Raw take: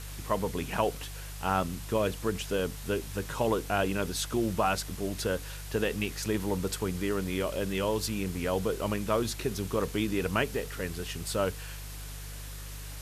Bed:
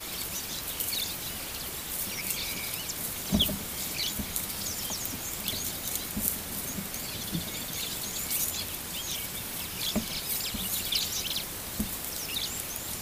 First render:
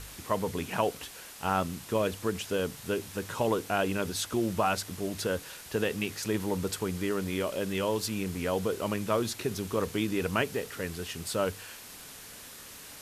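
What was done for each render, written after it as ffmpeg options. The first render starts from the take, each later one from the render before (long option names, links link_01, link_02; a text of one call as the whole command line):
ffmpeg -i in.wav -af "bandreject=frequency=50:width_type=h:width=4,bandreject=frequency=100:width_type=h:width=4,bandreject=frequency=150:width_type=h:width=4" out.wav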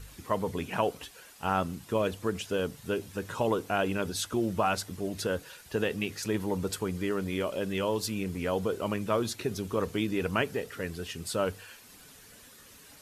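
ffmpeg -i in.wav -af "afftdn=noise_reduction=9:noise_floor=-47" out.wav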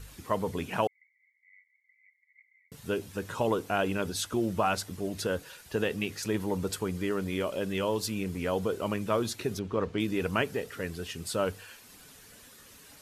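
ffmpeg -i in.wav -filter_complex "[0:a]asettb=1/sr,asplit=3[link_01][link_02][link_03];[link_01]atrim=end=0.874[link_04];[link_02]atrim=start=0.87:end=2.72,asetpts=PTS-STARTPTS,afade=type=in:duration=0.004:curve=qsin,afade=type=out:start_time=1.846:duration=0.004:curve=qsin,asuperpass=centerf=2100:order=12:qfactor=7.4[link_05];[link_03]atrim=start=2.716[link_06];[link_04][link_05]acrossfade=duration=0.004:curve1=hsin:curve2=qsin[link_07];[link_07][link_06]acrossfade=duration=0.004:curve1=qsin:curve2=hsin,asettb=1/sr,asplit=3[link_08][link_09][link_10];[link_08]atrim=end=9.594[link_11];[link_09]atrim=start=9.59:end=10,asetpts=PTS-STARTPTS,afade=type=in:duration=0.004:curve=qsin,afade=type=out:start_time=0.406:duration=0.004:curve=qsin,adynamicsmooth=sensitivity=3:basefreq=3600[link_12];[link_10]atrim=start=9.996[link_13];[link_11][link_12]acrossfade=duration=0.004:curve1=hsin:curve2=qsin[link_14];[link_14][link_13]acrossfade=duration=0.004:curve1=qsin:curve2=hsin" out.wav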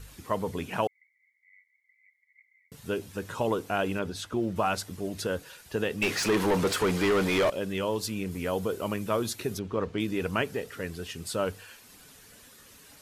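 ffmpeg -i in.wav -filter_complex "[0:a]asettb=1/sr,asplit=3[link_01][link_02][link_03];[link_01]atrim=end=3.994[link_04];[link_02]atrim=start=3.99:end=4.56,asetpts=PTS-STARTPTS,afade=type=in:duration=0.004:curve=qsin,afade=type=out:start_time=0.566:duration=0.004:curve=qsin,highshelf=frequency=5300:gain=-11.5[link_05];[link_03]atrim=start=4.556[link_06];[link_04][link_05]acrossfade=duration=0.004:curve1=hsin:curve2=qsin[link_07];[link_07][link_06]acrossfade=duration=0.004:curve1=qsin:curve2=hsin,asettb=1/sr,asplit=3[link_08][link_09][link_10];[link_08]atrim=end=6.024[link_11];[link_09]atrim=start=6.02:end=7.5,asetpts=PTS-STARTPTS,afade=type=in:duration=0.004:curve=qsin,afade=type=out:start_time=1.476:duration=0.004:curve=qsin,asplit=2[link_12][link_13];[link_13]highpass=frequency=720:poles=1,volume=26dB,asoftclip=type=tanh:threshold=-16dB[link_14];[link_12][link_14]amix=inputs=2:normalize=0,lowpass=frequency=3300:poles=1,volume=-6dB[link_15];[link_10]atrim=start=7.496[link_16];[link_11][link_15]acrossfade=duration=0.004:curve1=hsin:curve2=qsin[link_17];[link_17][link_16]acrossfade=duration=0.004:curve1=qsin:curve2=hsin,asettb=1/sr,asplit=3[link_18][link_19][link_20];[link_18]atrim=end=8.314[link_21];[link_19]atrim=start=8.31:end=9.58,asetpts=PTS-STARTPTS,afade=type=in:duration=0.004:curve=qsin,afade=type=out:start_time=1.266:duration=0.004:curve=qsin,highshelf=frequency=11000:gain=9[link_22];[link_20]atrim=start=9.576[link_23];[link_21][link_22]acrossfade=duration=0.004:curve1=hsin:curve2=qsin[link_24];[link_24][link_23]acrossfade=duration=0.004:curve1=qsin:curve2=hsin" out.wav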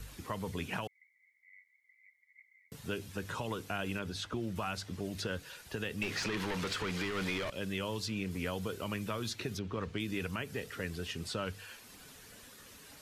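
ffmpeg -i in.wav -filter_complex "[0:a]acrossover=split=200|1400|6000[link_01][link_02][link_03][link_04];[link_01]acompressor=threshold=-38dB:ratio=4[link_05];[link_02]acompressor=threshold=-40dB:ratio=4[link_06];[link_03]acompressor=threshold=-35dB:ratio=4[link_07];[link_04]acompressor=threshold=-57dB:ratio=4[link_08];[link_05][link_06][link_07][link_08]amix=inputs=4:normalize=0,alimiter=level_in=0.5dB:limit=-24dB:level=0:latency=1:release=118,volume=-0.5dB" out.wav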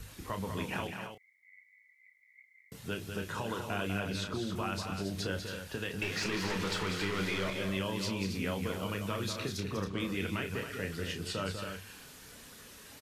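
ffmpeg -i in.wav -filter_complex "[0:a]asplit=2[link_01][link_02];[link_02]adelay=31,volume=-7dB[link_03];[link_01][link_03]amix=inputs=2:normalize=0,aecho=1:1:195.3|274.1:0.447|0.398" out.wav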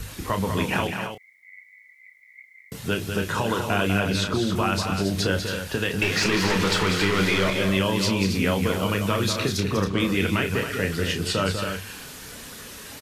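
ffmpeg -i in.wav -af "volume=12dB" out.wav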